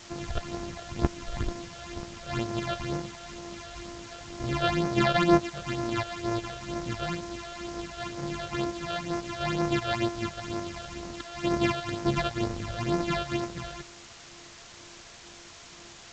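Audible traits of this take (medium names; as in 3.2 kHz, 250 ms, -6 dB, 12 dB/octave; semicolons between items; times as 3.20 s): a buzz of ramps at a fixed pitch in blocks of 128 samples; phasing stages 8, 2.1 Hz, lowest notch 270–3300 Hz; a quantiser's noise floor 8-bit, dither triangular; G.722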